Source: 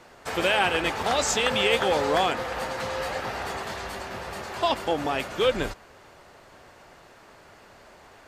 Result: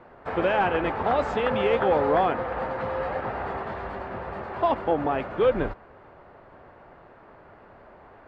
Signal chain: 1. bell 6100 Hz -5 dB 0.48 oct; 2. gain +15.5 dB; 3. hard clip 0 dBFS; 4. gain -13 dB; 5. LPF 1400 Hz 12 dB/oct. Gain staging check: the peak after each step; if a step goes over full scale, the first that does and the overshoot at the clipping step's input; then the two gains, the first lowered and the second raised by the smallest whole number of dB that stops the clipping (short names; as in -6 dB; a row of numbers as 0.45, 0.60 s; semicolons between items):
-8.5, +7.0, 0.0, -13.0, -12.5 dBFS; step 2, 7.0 dB; step 2 +8.5 dB, step 4 -6 dB